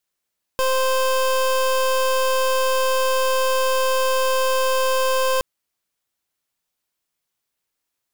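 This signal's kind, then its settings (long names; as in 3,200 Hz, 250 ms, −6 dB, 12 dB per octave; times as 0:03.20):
pulse wave 522 Hz, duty 26% −19 dBFS 4.82 s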